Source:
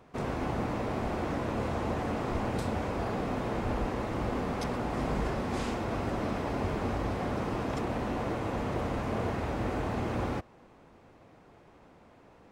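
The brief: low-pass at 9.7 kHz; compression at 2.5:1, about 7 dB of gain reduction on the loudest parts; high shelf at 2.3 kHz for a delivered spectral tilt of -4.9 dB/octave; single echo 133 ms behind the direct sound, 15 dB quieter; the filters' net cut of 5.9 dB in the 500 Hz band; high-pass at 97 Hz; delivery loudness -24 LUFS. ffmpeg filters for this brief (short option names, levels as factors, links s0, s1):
-af "highpass=97,lowpass=9700,equalizer=f=500:t=o:g=-8,highshelf=f=2300:g=4.5,acompressor=threshold=0.00891:ratio=2.5,aecho=1:1:133:0.178,volume=7.5"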